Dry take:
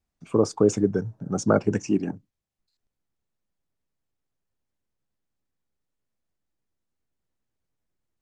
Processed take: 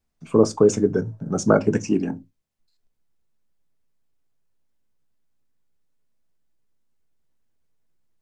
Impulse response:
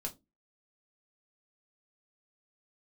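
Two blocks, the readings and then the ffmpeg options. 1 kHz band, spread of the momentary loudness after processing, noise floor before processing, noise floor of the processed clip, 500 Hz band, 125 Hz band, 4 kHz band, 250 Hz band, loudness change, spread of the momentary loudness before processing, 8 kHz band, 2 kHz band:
+3.0 dB, 10 LU, -83 dBFS, -73 dBFS, +4.5 dB, +2.0 dB, +3.0 dB, +3.0 dB, +3.5 dB, 10 LU, +3.5 dB, +4.0 dB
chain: -filter_complex "[0:a]asplit=2[s0][s1];[1:a]atrim=start_sample=2205,atrim=end_sample=6174[s2];[s1][s2]afir=irnorm=-1:irlink=0,volume=0.631[s3];[s0][s3]amix=inputs=2:normalize=0"

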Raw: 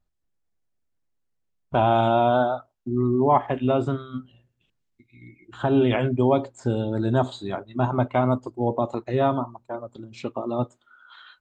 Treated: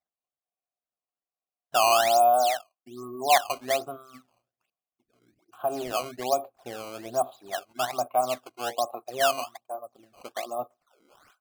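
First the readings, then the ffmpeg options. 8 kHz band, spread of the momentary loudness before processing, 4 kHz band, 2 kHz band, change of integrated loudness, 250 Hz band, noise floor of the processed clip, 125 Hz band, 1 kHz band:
no reading, 14 LU, +7.0 dB, +2.0 dB, -2.5 dB, -18.5 dB, under -85 dBFS, -25.5 dB, 0.0 dB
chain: -filter_complex "[0:a]asplit=3[s0][s1][s2];[s0]bandpass=f=730:t=q:w=8,volume=1[s3];[s1]bandpass=f=1090:t=q:w=8,volume=0.501[s4];[s2]bandpass=f=2440:t=q:w=8,volume=0.355[s5];[s3][s4][s5]amix=inputs=3:normalize=0,acrusher=samples=14:mix=1:aa=0.000001:lfo=1:lforange=22.4:lforate=1.2,volume=1.58"

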